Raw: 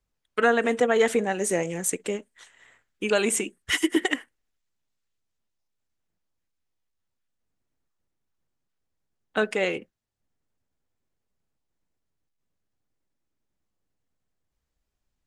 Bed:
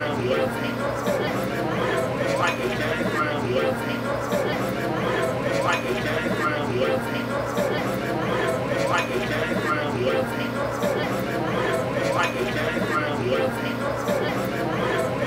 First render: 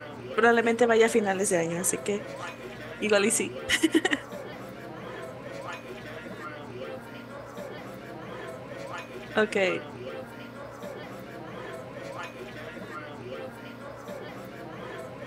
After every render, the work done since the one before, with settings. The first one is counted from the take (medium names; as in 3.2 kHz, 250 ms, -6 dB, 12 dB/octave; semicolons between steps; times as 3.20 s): add bed -15.5 dB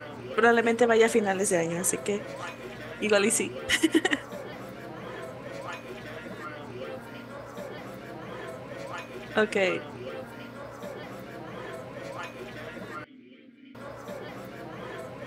13.04–13.75 s: vowel filter i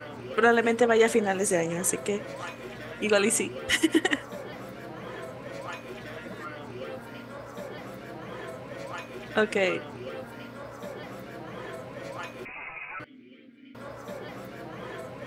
12.45–13.00 s: frequency inversion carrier 2.7 kHz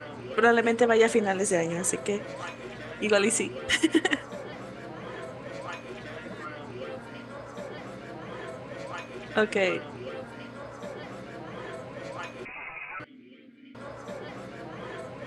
low-pass 9.5 kHz 24 dB/octave; band-stop 5.6 kHz, Q 24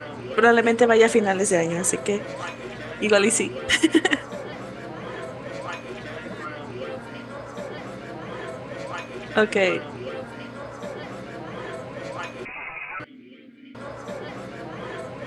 trim +5 dB; peak limiter -3 dBFS, peak gain reduction 1 dB